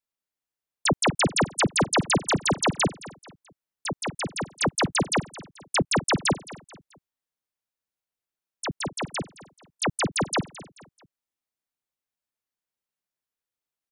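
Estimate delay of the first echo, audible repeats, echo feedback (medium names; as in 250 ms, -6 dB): 217 ms, 3, 40%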